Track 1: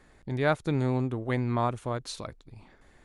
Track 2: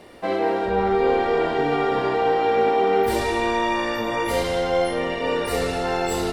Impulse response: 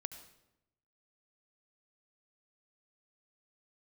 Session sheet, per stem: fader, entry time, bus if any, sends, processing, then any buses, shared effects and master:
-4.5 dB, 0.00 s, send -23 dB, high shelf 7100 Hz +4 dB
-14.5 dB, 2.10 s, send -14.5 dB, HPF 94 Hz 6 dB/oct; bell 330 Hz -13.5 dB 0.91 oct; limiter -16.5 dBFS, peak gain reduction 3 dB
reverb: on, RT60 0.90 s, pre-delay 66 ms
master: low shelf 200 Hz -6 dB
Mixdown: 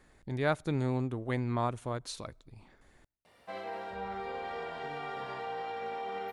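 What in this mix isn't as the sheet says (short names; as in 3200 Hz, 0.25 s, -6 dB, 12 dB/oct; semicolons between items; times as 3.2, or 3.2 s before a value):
stem 2: entry 2.10 s -> 3.25 s; master: missing low shelf 200 Hz -6 dB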